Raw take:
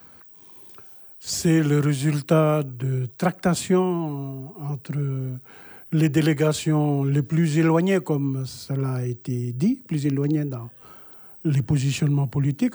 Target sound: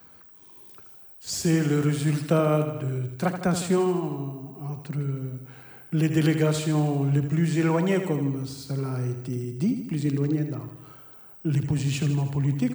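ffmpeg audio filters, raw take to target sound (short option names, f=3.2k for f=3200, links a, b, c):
-af "aecho=1:1:79|158|237|316|395|474|553:0.355|0.213|0.128|0.0766|0.046|0.0276|0.0166,volume=-3.5dB"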